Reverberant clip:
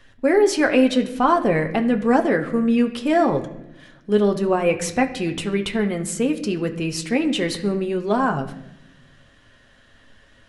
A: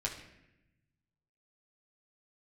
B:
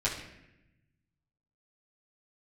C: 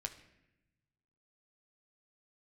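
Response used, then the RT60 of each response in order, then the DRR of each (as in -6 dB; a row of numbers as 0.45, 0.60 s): C; 0.90, 0.90, 0.90 s; -3.5, -9.0, 4.0 dB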